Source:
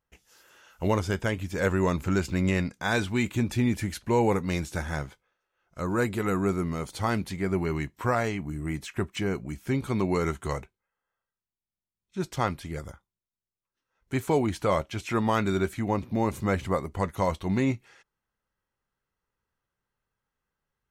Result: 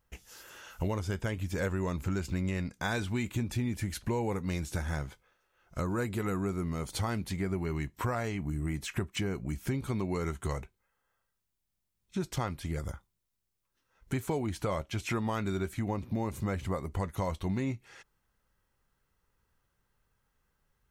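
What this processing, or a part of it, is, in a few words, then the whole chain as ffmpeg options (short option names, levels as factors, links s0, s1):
ASMR close-microphone chain: -af "lowshelf=f=110:g=8,acompressor=threshold=0.0141:ratio=4,highshelf=f=7100:g=4,volume=1.88"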